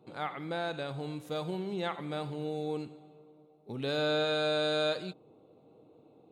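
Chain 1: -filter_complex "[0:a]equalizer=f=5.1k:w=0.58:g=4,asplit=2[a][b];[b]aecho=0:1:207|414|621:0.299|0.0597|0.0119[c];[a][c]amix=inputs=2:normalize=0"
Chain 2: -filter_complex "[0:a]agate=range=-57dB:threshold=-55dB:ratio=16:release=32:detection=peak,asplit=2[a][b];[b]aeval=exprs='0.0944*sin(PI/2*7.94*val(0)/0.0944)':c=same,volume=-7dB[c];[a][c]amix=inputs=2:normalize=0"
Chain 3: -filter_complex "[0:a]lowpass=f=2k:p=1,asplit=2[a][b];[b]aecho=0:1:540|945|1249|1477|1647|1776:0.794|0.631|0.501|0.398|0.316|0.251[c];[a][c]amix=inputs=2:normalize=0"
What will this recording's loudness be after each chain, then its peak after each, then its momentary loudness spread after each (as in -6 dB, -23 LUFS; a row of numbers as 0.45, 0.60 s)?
-32.0, -28.5, -32.0 LUFS; -19.0, -20.0, -18.5 dBFS; 13, 8, 7 LU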